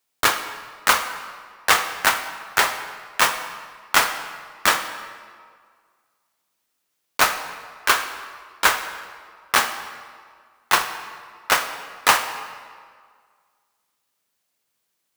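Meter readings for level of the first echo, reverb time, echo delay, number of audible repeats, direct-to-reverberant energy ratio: none, 1.9 s, none, none, 8.0 dB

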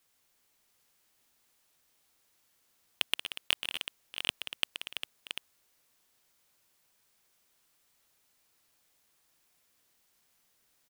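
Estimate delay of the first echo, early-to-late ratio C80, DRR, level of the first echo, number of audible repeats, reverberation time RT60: 0.126 s, none, none, -10.5 dB, 6, none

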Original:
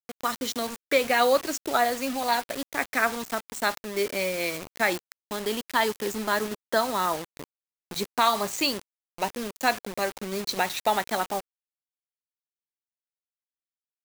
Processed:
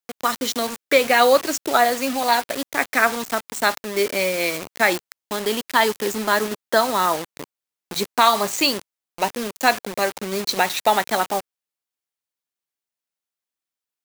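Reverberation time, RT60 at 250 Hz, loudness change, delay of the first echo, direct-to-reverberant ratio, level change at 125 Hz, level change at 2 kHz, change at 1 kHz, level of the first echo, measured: none, none, +6.5 dB, none, none, +4.5 dB, +6.5 dB, +6.5 dB, none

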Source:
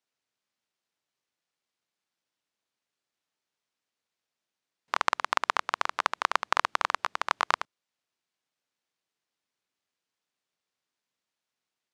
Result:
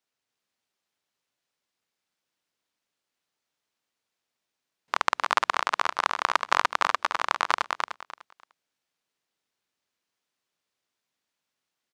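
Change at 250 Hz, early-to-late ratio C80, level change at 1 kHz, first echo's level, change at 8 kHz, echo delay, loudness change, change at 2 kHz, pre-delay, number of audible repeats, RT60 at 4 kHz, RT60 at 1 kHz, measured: +3.0 dB, none, +3.0 dB, -4.0 dB, +3.0 dB, 0.298 s, +2.5 dB, +3.0 dB, none, 3, none, none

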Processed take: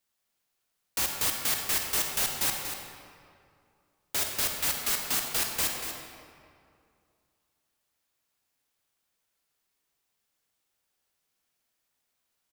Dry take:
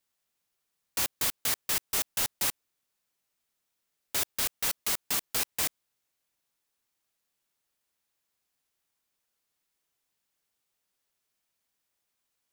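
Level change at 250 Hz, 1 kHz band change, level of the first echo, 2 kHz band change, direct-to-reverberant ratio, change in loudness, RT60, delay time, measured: +2.5 dB, +3.0 dB, -9.0 dB, +2.5 dB, 1.0 dB, +1.0 dB, 2.4 s, 0.238 s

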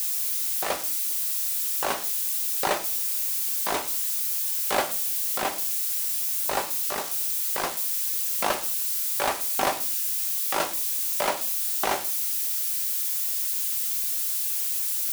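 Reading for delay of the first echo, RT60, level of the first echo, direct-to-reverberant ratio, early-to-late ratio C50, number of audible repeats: none, 0.45 s, none, 6.0 dB, 14.5 dB, none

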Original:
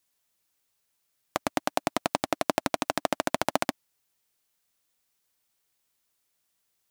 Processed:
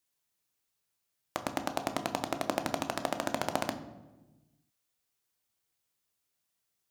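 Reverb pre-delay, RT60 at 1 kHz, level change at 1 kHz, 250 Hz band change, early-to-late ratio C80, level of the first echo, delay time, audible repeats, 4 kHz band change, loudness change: 13 ms, 1.0 s, -5.0 dB, -4.0 dB, 13.5 dB, none, none, none, -5.5 dB, -5.0 dB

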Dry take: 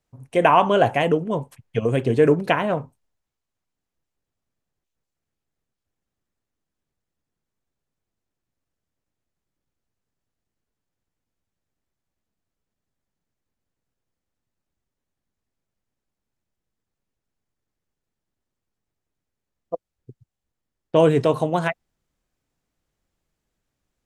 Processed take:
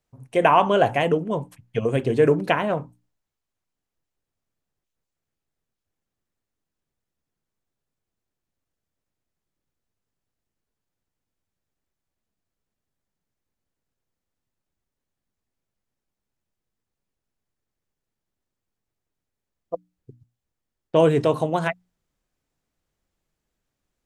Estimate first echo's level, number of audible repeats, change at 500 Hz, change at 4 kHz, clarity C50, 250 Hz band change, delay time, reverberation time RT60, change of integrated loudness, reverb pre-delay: none, none, -1.0 dB, -1.0 dB, none, -2.0 dB, none, none, -1.0 dB, none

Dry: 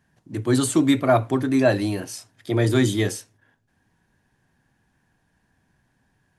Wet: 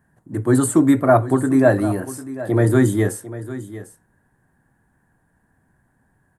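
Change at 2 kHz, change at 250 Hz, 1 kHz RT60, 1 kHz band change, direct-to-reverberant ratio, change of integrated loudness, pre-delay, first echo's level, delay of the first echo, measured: +2.0 dB, +4.0 dB, none, +4.0 dB, none, +3.5 dB, none, -15.0 dB, 0.749 s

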